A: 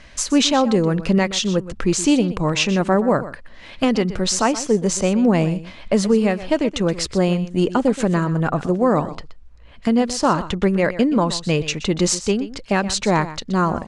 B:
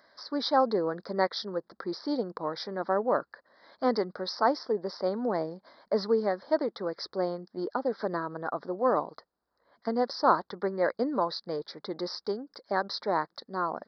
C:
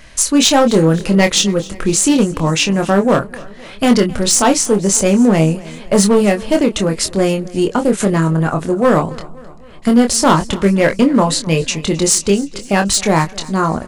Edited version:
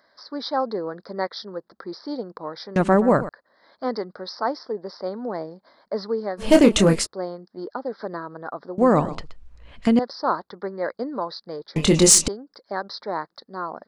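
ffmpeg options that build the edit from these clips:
-filter_complex "[0:a]asplit=2[s0][s1];[2:a]asplit=2[s2][s3];[1:a]asplit=5[s4][s5][s6][s7][s8];[s4]atrim=end=2.762[s9];[s0]atrim=start=2.758:end=3.292[s10];[s5]atrim=start=3.288:end=6.47[s11];[s2]atrim=start=6.37:end=7.07[s12];[s6]atrim=start=6.97:end=8.782[s13];[s1]atrim=start=8.778:end=9.992[s14];[s7]atrim=start=9.988:end=11.762[s15];[s3]atrim=start=11.758:end=12.282[s16];[s8]atrim=start=12.278[s17];[s9][s10]acrossfade=d=0.004:c1=hsin:c2=hsin[s18];[s18][s11]acrossfade=d=0.004:c1=hsin:c2=hsin[s19];[s19][s12]acrossfade=d=0.1:c1=tri:c2=tri[s20];[s20][s13]acrossfade=d=0.1:c1=tri:c2=tri[s21];[s21][s14]acrossfade=d=0.004:c1=hsin:c2=hsin[s22];[s22][s15]acrossfade=d=0.004:c1=hsin:c2=hsin[s23];[s23][s16]acrossfade=d=0.004:c1=hsin:c2=hsin[s24];[s24][s17]acrossfade=d=0.004:c1=hsin:c2=hsin"

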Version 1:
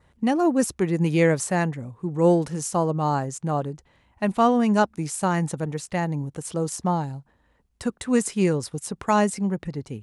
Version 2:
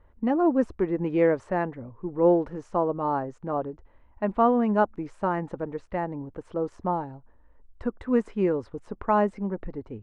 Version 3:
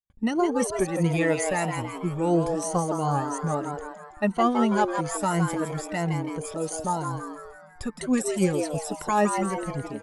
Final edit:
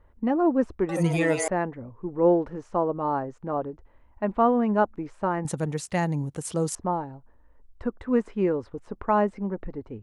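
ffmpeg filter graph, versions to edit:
-filter_complex "[1:a]asplit=3[s0][s1][s2];[s0]atrim=end=0.892[s3];[2:a]atrim=start=0.888:end=1.482[s4];[s1]atrim=start=1.478:end=5.452[s5];[0:a]atrim=start=5.448:end=6.752[s6];[s2]atrim=start=6.748[s7];[s3][s4]acrossfade=d=0.004:c1=hsin:c2=hsin[s8];[s8][s5]acrossfade=d=0.004:c1=hsin:c2=hsin[s9];[s9][s6]acrossfade=d=0.004:c1=hsin:c2=hsin[s10];[s10][s7]acrossfade=d=0.004:c1=hsin:c2=hsin"

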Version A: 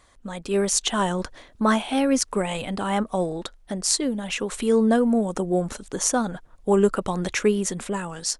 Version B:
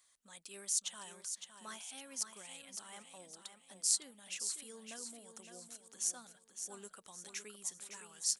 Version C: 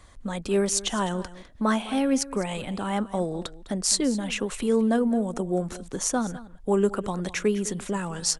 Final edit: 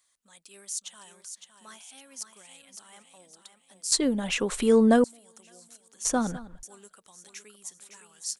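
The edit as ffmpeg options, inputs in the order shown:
-filter_complex "[1:a]asplit=3[s0][s1][s2];[s0]atrim=end=3.922[s3];[0:a]atrim=start=3.918:end=5.042[s4];[s1]atrim=start=5.038:end=6.052[s5];[2:a]atrim=start=6.048:end=6.632[s6];[s2]atrim=start=6.628[s7];[s3][s4]acrossfade=d=0.004:c1=hsin:c2=hsin[s8];[s8][s5]acrossfade=d=0.004:c1=hsin:c2=hsin[s9];[s9][s6]acrossfade=d=0.004:c1=hsin:c2=hsin[s10];[s10][s7]acrossfade=d=0.004:c1=hsin:c2=hsin"

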